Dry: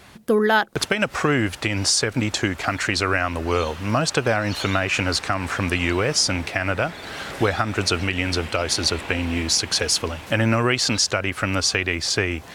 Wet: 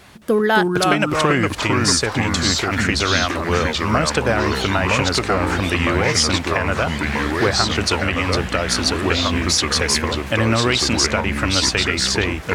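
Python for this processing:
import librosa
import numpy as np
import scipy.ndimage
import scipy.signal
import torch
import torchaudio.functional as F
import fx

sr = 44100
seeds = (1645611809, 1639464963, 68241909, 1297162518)

y = fx.transient(x, sr, attack_db=-7, sustain_db=8, at=(2.36, 2.85))
y = fx.echo_pitch(y, sr, ms=217, semitones=-3, count=2, db_per_echo=-3.0)
y = y * 10.0 ** (1.5 / 20.0)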